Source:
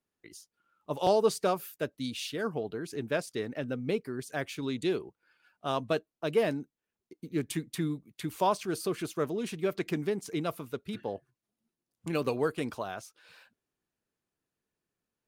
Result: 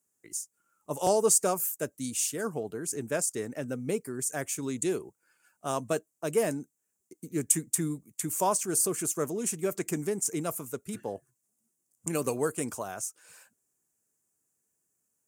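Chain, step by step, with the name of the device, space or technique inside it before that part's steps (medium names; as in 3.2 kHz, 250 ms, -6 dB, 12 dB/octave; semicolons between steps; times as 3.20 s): budget condenser microphone (high-pass 62 Hz; resonant high shelf 5.4 kHz +12.5 dB, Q 3)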